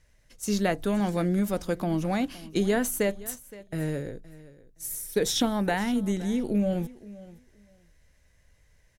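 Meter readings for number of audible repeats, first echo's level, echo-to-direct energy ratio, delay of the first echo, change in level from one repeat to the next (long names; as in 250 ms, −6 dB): 2, −19.0 dB, −19.0 dB, 518 ms, −15.0 dB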